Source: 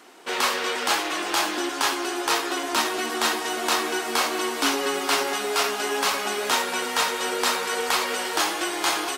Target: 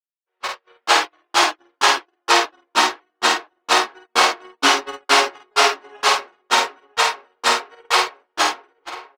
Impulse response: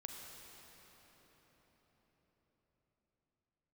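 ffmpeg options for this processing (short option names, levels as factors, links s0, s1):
-filter_complex "[0:a]bass=f=250:g=-14,treble=f=4000:g=3,afftfilt=real='re*gte(hypot(re,im),0.0355)':imag='im*gte(hypot(re,im),0.0355)':win_size=1024:overlap=0.75,dynaudnorm=f=120:g=9:m=2.51,agate=range=0.002:threshold=0.158:ratio=16:detection=peak,asplit=2[s0][s1];[s1]adelay=981,lowpass=f=3500:p=1,volume=0.133,asplit=2[s2][s3];[s3]adelay=981,lowpass=f=3500:p=1,volume=0.43,asplit=2[s4][s5];[s5]adelay=981,lowpass=f=3500:p=1,volume=0.43,asplit=2[s6][s7];[s7]adelay=981,lowpass=f=3500:p=1,volume=0.43[s8];[s2][s4][s6][s8]amix=inputs=4:normalize=0[s9];[s0][s9]amix=inputs=2:normalize=0,adynamicsmooth=sensitivity=7:basefreq=3000,highshelf=f=5200:g=-8.5,asplit=2[s10][s11];[s11]adelay=49,volume=0.631[s12];[s10][s12]amix=inputs=2:normalize=0,volume=1.5"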